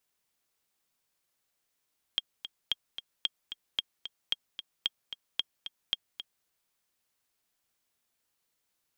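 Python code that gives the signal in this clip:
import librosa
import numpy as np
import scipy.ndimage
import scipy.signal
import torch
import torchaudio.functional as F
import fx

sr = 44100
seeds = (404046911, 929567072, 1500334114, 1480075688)

y = fx.click_track(sr, bpm=224, beats=2, bars=8, hz=3240.0, accent_db=10.5, level_db=-14.5)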